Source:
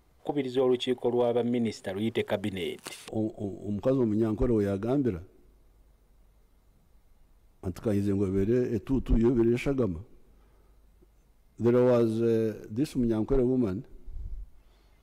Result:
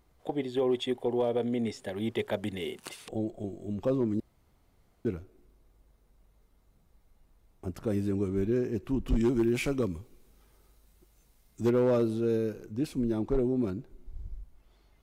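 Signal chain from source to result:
0:04.20–0:05.05: fill with room tone
0:09.08–0:11.70: high-shelf EQ 2,600 Hz +11.5 dB
level −2.5 dB

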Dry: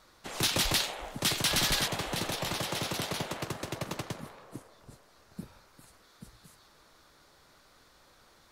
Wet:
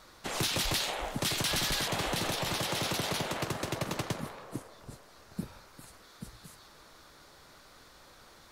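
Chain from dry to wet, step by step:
brickwall limiter −28 dBFS, peak gain reduction 9 dB
level +5 dB

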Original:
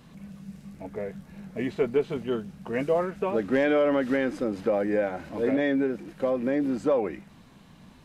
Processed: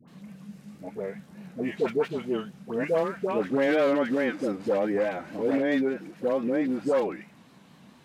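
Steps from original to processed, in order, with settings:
wavefolder on the positive side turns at −19 dBFS
pitch vibrato 4.6 Hz 78 cents
high-pass filter 150 Hz 12 dB per octave
all-pass dispersion highs, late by 80 ms, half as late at 950 Hz

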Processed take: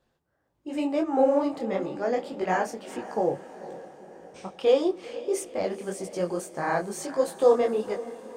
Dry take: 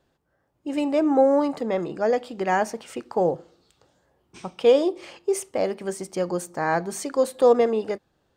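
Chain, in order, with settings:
feedback delay with all-pass diffusion 476 ms, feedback 55%, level −15 dB
micro pitch shift up and down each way 57 cents

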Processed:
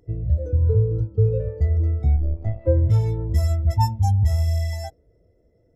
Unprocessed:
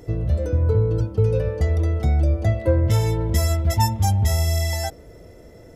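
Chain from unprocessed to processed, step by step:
0:02.16–0:02.67: gain on one half-wave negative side −12 dB
every bin expanded away from the loudest bin 1.5 to 1

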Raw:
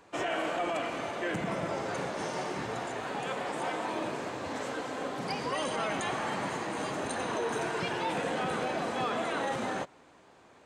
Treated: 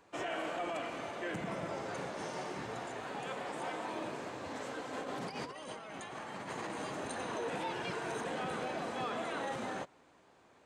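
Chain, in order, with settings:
0:04.93–0:06.71: compressor whose output falls as the input rises −36 dBFS, ratio −0.5
0:07.48–0:08.25: reverse
level −6 dB

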